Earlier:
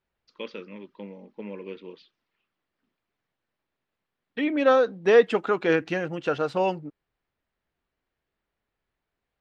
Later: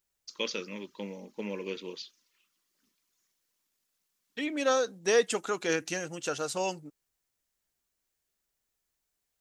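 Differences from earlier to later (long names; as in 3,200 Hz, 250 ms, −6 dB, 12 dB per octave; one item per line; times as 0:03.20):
second voice −9.0 dB
master: remove high-frequency loss of the air 410 metres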